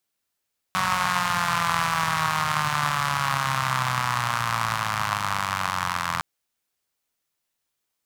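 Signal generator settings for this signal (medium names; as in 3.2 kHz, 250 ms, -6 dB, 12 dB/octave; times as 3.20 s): four-cylinder engine model, changing speed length 5.46 s, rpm 5600, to 2500, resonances 130/1100 Hz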